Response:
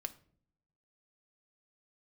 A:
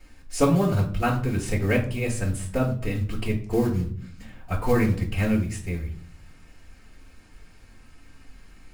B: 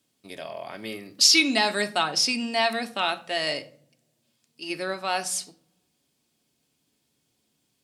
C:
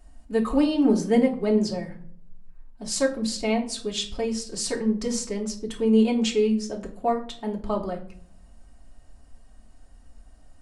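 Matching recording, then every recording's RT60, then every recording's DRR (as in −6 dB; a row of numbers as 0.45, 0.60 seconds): B; 0.55, 0.55, 0.55 seconds; −12.5, 6.5, −2.5 decibels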